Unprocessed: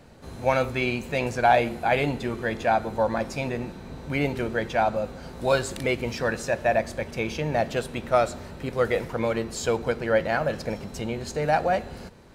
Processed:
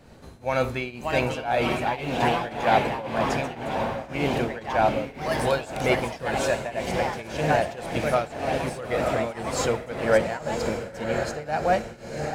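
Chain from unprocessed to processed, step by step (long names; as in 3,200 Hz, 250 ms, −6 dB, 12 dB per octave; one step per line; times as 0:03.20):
feedback delay with all-pass diffusion 915 ms, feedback 43%, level −5 dB
delay with pitch and tempo change per echo 661 ms, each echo +3 semitones, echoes 2, each echo −6 dB
shaped tremolo triangle 1.9 Hz, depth 90%
level +2.5 dB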